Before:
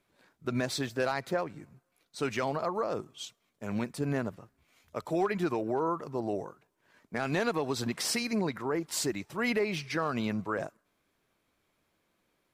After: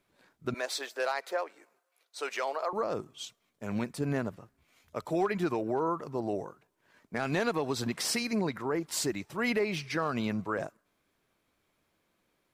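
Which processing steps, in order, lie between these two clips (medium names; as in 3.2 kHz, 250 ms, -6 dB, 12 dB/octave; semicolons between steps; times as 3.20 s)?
0.54–2.73 s: high-pass 450 Hz 24 dB/octave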